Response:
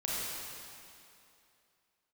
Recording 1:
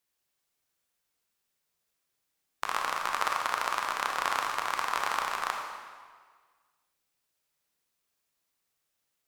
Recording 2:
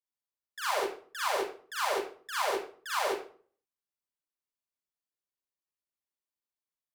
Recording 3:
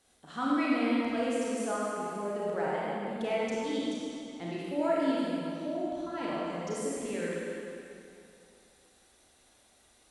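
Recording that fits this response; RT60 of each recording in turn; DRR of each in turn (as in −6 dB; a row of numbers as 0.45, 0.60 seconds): 3; 1.7, 0.45, 2.7 seconds; 1.0, −10.0, −7.0 decibels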